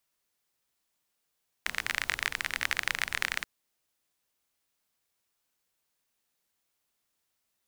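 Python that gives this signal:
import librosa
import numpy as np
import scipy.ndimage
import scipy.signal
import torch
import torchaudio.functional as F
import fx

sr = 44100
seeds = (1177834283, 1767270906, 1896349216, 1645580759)

y = fx.rain(sr, seeds[0], length_s=1.78, drops_per_s=29.0, hz=1900.0, bed_db=-15.5)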